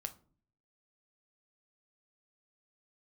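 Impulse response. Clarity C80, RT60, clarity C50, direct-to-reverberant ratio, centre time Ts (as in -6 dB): 22.5 dB, 0.45 s, 16.5 dB, 7.0 dB, 5 ms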